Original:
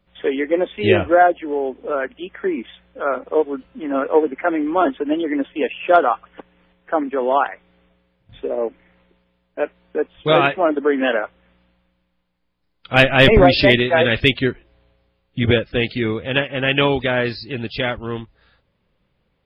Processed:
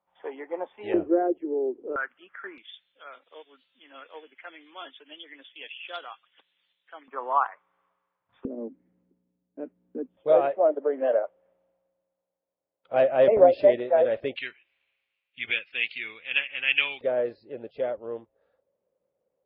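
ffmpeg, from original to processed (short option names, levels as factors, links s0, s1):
-af "asetnsamples=n=441:p=0,asendcmd='0.94 bandpass f 360;1.96 bandpass f 1400;2.58 bandpass f 3700;7.08 bandpass f 1100;8.45 bandpass f 250;10.17 bandpass f 580;14.36 bandpass f 2500;17.01 bandpass f 540',bandpass=f=870:t=q:w=4.3:csg=0"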